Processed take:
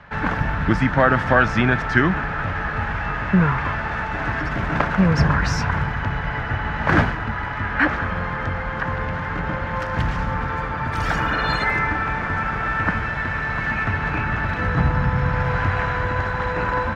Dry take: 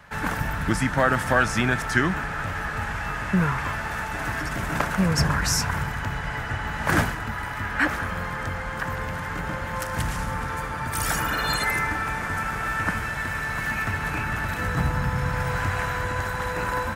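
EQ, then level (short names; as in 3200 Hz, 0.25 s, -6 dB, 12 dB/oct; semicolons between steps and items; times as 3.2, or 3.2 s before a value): air absorption 230 m; +5.5 dB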